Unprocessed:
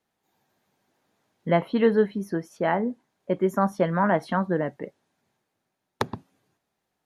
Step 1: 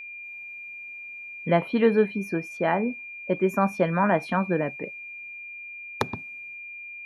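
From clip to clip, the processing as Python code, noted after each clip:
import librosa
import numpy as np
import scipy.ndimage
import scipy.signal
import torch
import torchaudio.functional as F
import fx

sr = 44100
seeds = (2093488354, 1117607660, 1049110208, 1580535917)

y = x + 10.0 ** (-37.0 / 20.0) * np.sin(2.0 * np.pi * 2400.0 * np.arange(len(x)) / sr)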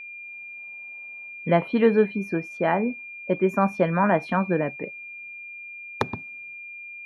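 y = fx.spec_box(x, sr, start_s=0.57, length_s=0.73, low_hz=460.0, high_hz=1200.0, gain_db=7)
y = fx.high_shelf(y, sr, hz=6200.0, db=-10.5)
y = y * 10.0 ** (1.5 / 20.0)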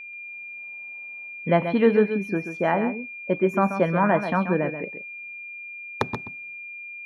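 y = x + 10.0 ** (-9.5 / 20.0) * np.pad(x, (int(133 * sr / 1000.0), 0))[:len(x)]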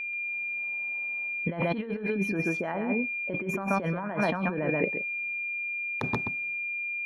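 y = fx.over_compress(x, sr, threshold_db=-29.0, ratio=-1.0)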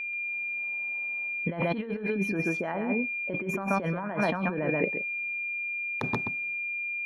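y = fx.peak_eq(x, sr, hz=68.0, db=-7.0, octaves=0.66)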